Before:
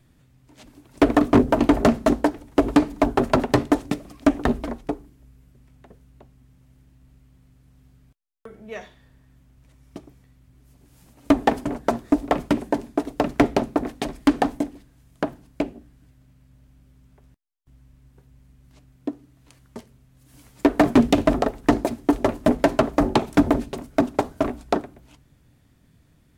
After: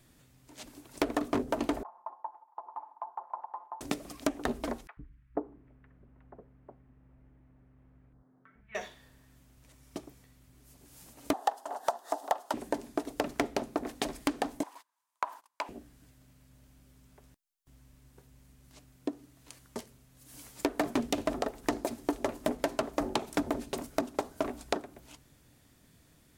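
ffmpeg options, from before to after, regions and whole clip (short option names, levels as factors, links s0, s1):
-filter_complex "[0:a]asettb=1/sr,asplit=3[s0][s1][s2];[s0]atrim=end=1.834[s3];[s1]atrim=start=1.83:end=3.81,asetpts=PTS-STARTPTS,afade=t=in:d=0.004:c=qsin,afade=t=out:st=1.976:d=0.004:c=qsin,aecho=1:1:5.7:0.44,atrim=end_sample=87318,acompressor=threshold=0.0447:ratio=3:attack=3.2:release=140:knee=1:detection=peak,asuperpass=centerf=930:order=4:qfactor=3.8[s4];[s2]atrim=start=3.806[s5];[s3][s4]acrossfade=d=0.004:c1=hsin:c2=qsin[s6];[s6][s5]acrossfade=d=0.004:c1=qsin:c2=hsin,asettb=1/sr,asplit=3[s7][s8][s9];[s7]atrim=end=4.874[s10];[s8]atrim=start=4.87:end=8.75,asetpts=PTS-STARTPTS,afade=t=in:d=0.004:c=qsin,afade=t=out:st=3.876:d=0.004:c=qsin,lowpass=f=1900:w=0.5412,lowpass=f=1900:w=1.3066,acrossover=split=150|1500[s11][s12][s13];[s11]adelay=100[s14];[s12]adelay=480[s15];[s14][s15][s13]amix=inputs=3:normalize=0,atrim=end_sample=171108[s16];[s9]atrim=start=8.746[s17];[s10][s16]acrossfade=d=0.004:c1=hsin:c2=qsin[s18];[s18][s17]acrossfade=d=0.004:c1=qsin:c2=hsin,asettb=1/sr,asplit=3[s19][s20][s21];[s19]atrim=end=11.334[s22];[s20]atrim=start=11.33:end=12.54,asetpts=PTS-STARTPTS,afade=t=in:d=0.004:c=qsin,afade=t=out:st=1.206:d=0.004:c=qsin,highpass=f=780:t=q:w=3.4,equalizer=f=2300:w=4.1:g=-13.5,acompressor=mode=upward:threshold=0.0282:ratio=2.5:attack=3.2:release=140:knee=2.83:detection=peak[s23];[s21]atrim=start=12.536[s24];[s22][s23]acrossfade=d=0.004:c1=hsin:c2=qsin[s25];[s25][s24]acrossfade=d=0.004:c1=qsin:c2=hsin,asettb=1/sr,asplit=3[s26][s27][s28];[s26]atrim=end=14.634[s29];[s27]atrim=start=14.63:end=15.69,asetpts=PTS-STARTPTS,afade=t=in:d=0.004:c=qsin,afade=t=out:st=1.056:d=0.004:c=qsin,acompressor=threshold=0.0316:ratio=2.5:attack=3.2:release=140:knee=1:detection=peak,highpass=f=980:t=q:w=9.1,agate=range=0.0708:threshold=0.002:ratio=16:release=100:detection=peak[s30];[s28]atrim=start=15.686[s31];[s29][s30]acrossfade=d=0.004:c1=hsin:c2=qsin[s32];[s32][s31]acrossfade=d=0.004:c1=qsin:c2=hsin,bass=f=250:g=-7,treble=f=4000:g=6,acompressor=threshold=0.0355:ratio=4"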